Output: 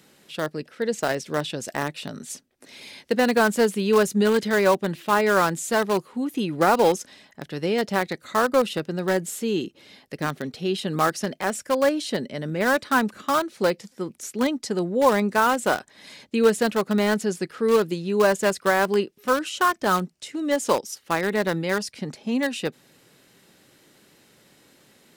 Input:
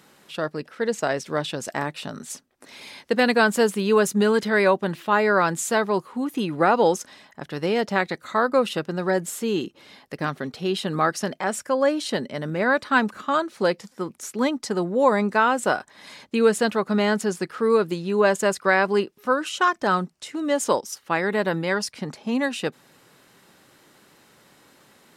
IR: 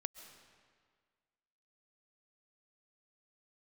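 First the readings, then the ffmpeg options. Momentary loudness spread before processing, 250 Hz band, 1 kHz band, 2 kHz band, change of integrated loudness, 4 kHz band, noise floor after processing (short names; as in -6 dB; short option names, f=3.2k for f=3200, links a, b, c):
11 LU, 0.0 dB, -0.5 dB, -1.5 dB, -0.5 dB, 0.0 dB, -58 dBFS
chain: -filter_complex "[0:a]acrossover=split=820|1400[a][b][c];[b]acrusher=bits=4:mix=0:aa=0.000001[d];[c]alimiter=limit=-22.5dB:level=0:latency=1:release=12[e];[a][d][e]amix=inputs=3:normalize=0"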